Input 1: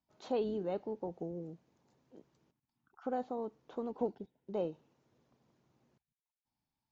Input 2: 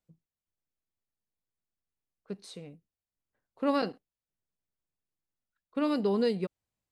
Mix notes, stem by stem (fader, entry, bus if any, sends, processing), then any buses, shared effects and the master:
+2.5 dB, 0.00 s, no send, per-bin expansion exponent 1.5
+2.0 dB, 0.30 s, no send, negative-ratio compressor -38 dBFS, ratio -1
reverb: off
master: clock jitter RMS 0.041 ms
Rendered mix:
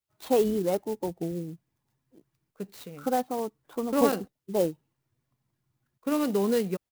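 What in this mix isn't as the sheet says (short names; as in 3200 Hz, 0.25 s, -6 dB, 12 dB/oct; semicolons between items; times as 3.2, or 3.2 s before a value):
stem 1 +2.5 dB -> +12.0 dB; stem 2: missing negative-ratio compressor -38 dBFS, ratio -1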